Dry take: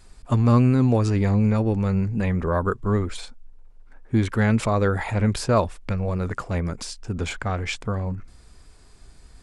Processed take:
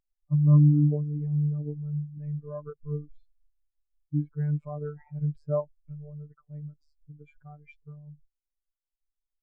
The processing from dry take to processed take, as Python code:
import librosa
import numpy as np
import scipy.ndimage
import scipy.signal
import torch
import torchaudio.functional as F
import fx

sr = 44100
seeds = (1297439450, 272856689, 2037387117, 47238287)

y = fx.robotise(x, sr, hz=148.0)
y = fx.spectral_expand(y, sr, expansion=2.5)
y = F.gain(torch.from_numpy(y), -3.5).numpy()